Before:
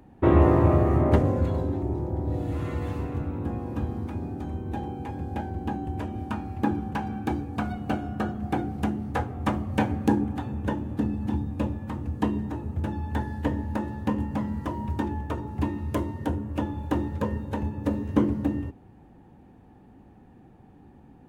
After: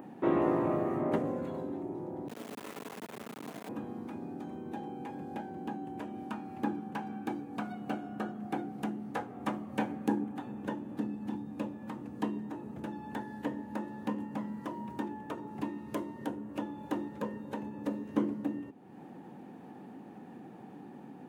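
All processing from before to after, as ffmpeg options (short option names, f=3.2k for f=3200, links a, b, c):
-filter_complex "[0:a]asettb=1/sr,asplit=3[a][b][c];[a]atrim=end=2.284[d];[b]atrim=start=2.28:end=3.69,asetpts=PTS-STARTPTS,afade=t=in:d=0.004:c=qsin,afade=t=out:st=1.406:d=0.004:c=qsin,equalizer=f=230:t=o:w=1.5:g=-6.5,afreqshift=-56,acrusher=bits=4:dc=4:mix=0:aa=0.000001[e];[c]atrim=start=3.686[f];[d][e]acrossfade=d=0.004:c1=hsin:c2=qsin[g];[g][f]acrossfade=d=0.004:c1=qsin:c2=hsin,highpass=f=170:w=0.5412,highpass=f=170:w=1.3066,adynamicequalizer=threshold=0.00112:dfrequency=4900:dqfactor=1.5:tfrequency=4900:tqfactor=1.5:attack=5:release=100:ratio=0.375:range=2.5:mode=cutabove:tftype=bell,acompressor=mode=upward:threshold=-28dB:ratio=2.5,volume=-7.5dB"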